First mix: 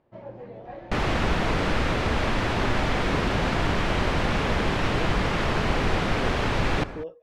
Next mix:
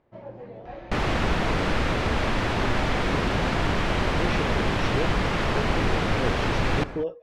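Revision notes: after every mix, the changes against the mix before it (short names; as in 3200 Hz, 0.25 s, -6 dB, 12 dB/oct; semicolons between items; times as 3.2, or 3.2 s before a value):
speech +7.0 dB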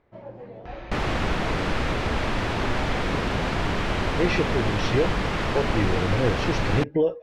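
speech +7.0 dB; second sound: send off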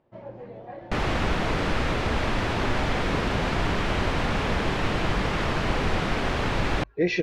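speech: entry +2.80 s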